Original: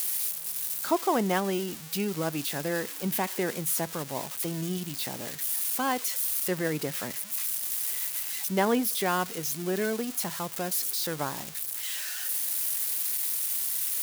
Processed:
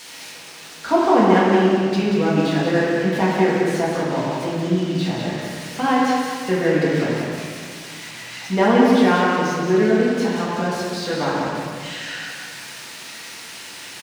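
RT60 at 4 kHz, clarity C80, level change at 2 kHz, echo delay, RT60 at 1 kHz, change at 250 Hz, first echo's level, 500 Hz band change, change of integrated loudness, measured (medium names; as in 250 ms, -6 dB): 1.3 s, -1.0 dB, +11.0 dB, 184 ms, 1.8 s, +14.0 dB, -4.0 dB, +13.0 dB, +9.0 dB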